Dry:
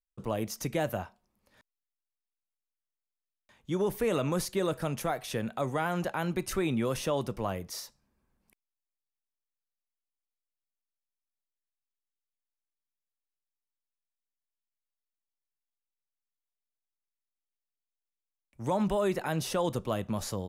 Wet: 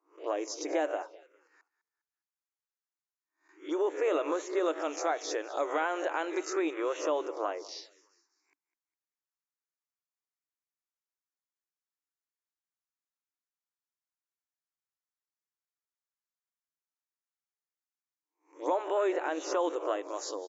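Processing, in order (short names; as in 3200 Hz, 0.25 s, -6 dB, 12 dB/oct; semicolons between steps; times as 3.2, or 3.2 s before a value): spectral swells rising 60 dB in 0.36 s; 4.66–6.39 bell 5100 Hz +4.5 dB 2.4 oct; on a send: frequency-shifting echo 0.203 s, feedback 39%, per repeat -35 Hz, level -18 dB; on the sum: envelope phaser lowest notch 540 Hz, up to 4900 Hz, full sweep at -26.5 dBFS; FFT band-pass 280–7500 Hz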